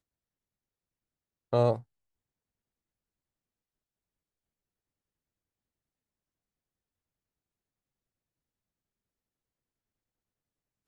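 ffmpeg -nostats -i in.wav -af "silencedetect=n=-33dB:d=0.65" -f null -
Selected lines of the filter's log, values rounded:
silence_start: 0.00
silence_end: 1.53 | silence_duration: 1.53
silence_start: 1.76
silence_end: 10.88 | silence_duration: 9.12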